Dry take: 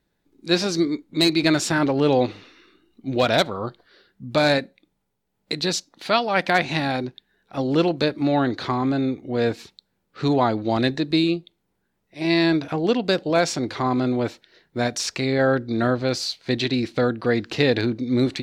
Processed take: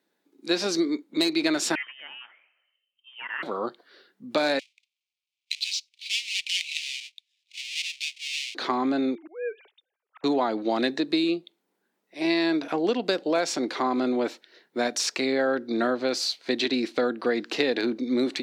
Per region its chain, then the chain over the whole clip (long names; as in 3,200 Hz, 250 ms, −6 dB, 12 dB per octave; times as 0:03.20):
0:01.75–0:03.43: envelope filter 630–1,800 Hz, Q 5.8, up, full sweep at −15.5 dBFS + voice inversion scrambler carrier 3,400 Hz
0:04.59–0:08.55: each half-wave held at its own peak + Butterworth high-pass 2,300 Hz 72 dB per octave + high-frequency loss of the air 110 metres
0:09.15–0:10.24: three sine waves on the formant tracks + low-shelf EQ 380 Hz −8.5 dB + volume swells 396 ms
whole clip: high-pass filter 240 Hz 24 dB per octave; downward compressor, threshold −20 dBFS